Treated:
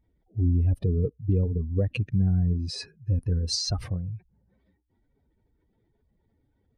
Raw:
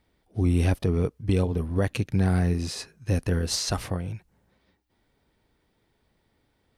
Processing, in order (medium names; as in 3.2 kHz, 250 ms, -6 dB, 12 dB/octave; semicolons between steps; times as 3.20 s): spectral contrast enhancement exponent 2